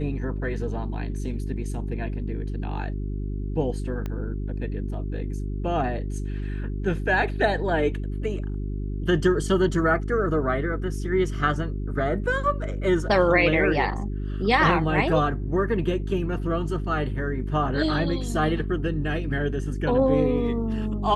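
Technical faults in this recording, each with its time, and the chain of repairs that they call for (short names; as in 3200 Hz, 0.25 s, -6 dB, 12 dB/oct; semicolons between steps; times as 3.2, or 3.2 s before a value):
hum 50 Hz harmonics 8 -29 dBFS
4.06 pop -19 dBFS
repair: de-click; de-hum 50 Hz, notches 8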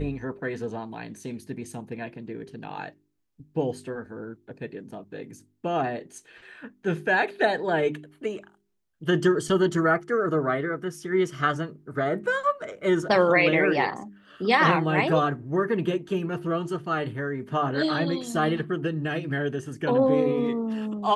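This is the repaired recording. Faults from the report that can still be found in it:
4.06 pop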